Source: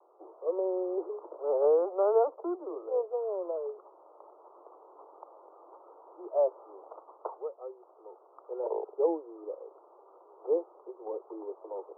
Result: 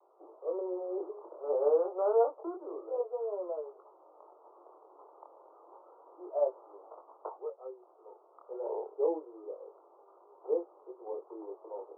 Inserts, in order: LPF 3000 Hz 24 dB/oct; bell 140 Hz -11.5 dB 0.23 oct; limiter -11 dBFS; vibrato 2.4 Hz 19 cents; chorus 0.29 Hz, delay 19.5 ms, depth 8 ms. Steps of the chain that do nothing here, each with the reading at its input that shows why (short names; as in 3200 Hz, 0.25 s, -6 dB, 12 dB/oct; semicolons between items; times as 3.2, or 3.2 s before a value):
LPF 3000 Hz: input band ends at 1200 Hz; bell 140 Hz: input band starts at 300 Hz; limiter -11 dBFS: input peak -14.5 dBFS